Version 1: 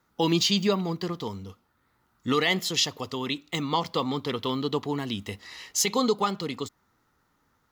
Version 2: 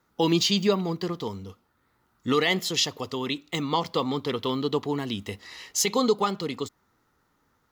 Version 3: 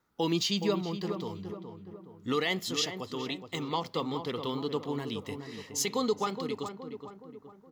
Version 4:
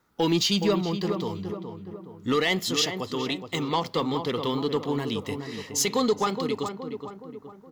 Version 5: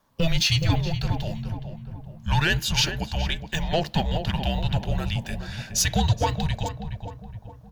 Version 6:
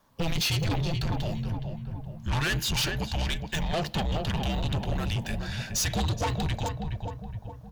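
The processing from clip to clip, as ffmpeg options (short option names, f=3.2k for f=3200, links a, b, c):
-af "equalizer=f=420:t=o:w=0.97:g=2.5"
-filter_complex "[0:a]asplit=2[a][b];[b]adelay=419,lowpass=f=1.5k:p=1,volume=-7.5dB,asplit=2[c][d];[d]adelay=419,lowpass=f=1.5k:p=1,volume=0.5,asplit=2[e][f];[f]adelay=419,lowpass=f=1.5k:p=1,volume=0.5,asplit=2[g][h];[h]adelay=419,lowpass=f=1.5k:p=1,volume=0.5,asplit=2[i][j];[j]adelay=419,lowpass=f=1.5k:p=1,volume=0.5,asplit=2[k][l];[l]adelay=419,lowpass=f=1.5k:p=1,volume=0.5[m];[a][c][e][g][i][k][m]amix=inputs=7:normalize=0,volume=-6.5dB"
-af "asoftclip=type=tanh:threshold=-21dB,volume=7dB"
-af "afreqshift=-320,volume=2.5dB"
-af "asoftclip=type=tanh:threshold=-26dB,volume=2dB"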